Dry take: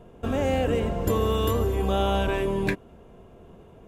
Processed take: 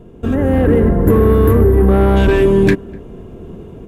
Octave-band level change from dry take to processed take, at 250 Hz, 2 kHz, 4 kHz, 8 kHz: +15.0 dB, +9.5 dB, +1.0 dB, no reading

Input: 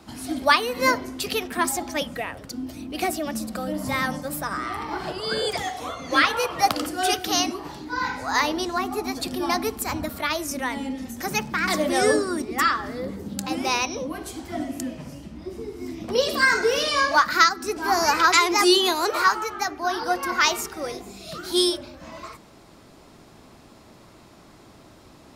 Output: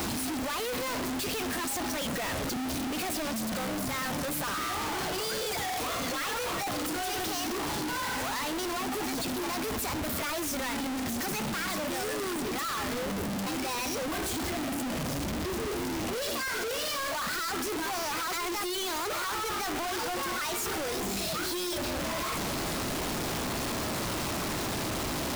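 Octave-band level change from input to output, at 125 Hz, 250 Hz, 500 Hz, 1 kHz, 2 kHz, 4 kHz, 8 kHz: +1.0 dB, -4.5 dB, -7.5 dB, -9.5 dB, -9.5 dB, -7.0 dB, -3.0 dB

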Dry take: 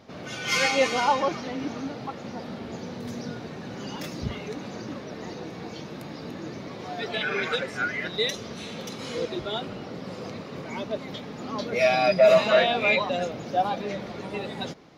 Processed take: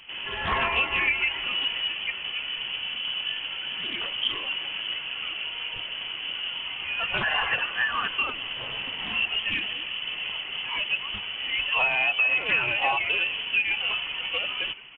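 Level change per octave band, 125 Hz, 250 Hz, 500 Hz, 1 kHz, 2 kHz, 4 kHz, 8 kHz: -9.0 dB, -13.0 dB, -15.5 dB, -4.0 dB, +5.0 dB, +8.0 dB, under -40 dB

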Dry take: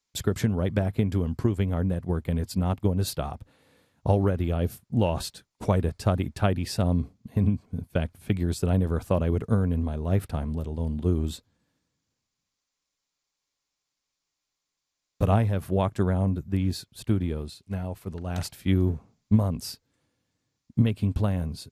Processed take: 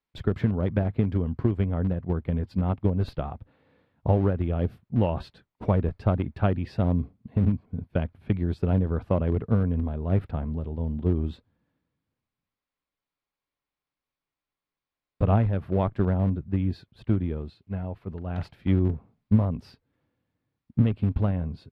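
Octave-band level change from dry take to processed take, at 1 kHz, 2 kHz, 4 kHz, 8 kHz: -1.0 dB, -3.0 dB, under -10 dB, under -25 dB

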